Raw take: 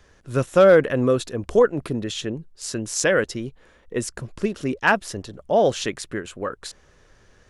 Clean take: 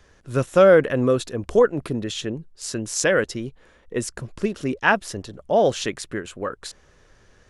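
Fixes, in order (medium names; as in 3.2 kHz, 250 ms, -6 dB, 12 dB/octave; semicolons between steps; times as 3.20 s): clip repair -5.5 dBFS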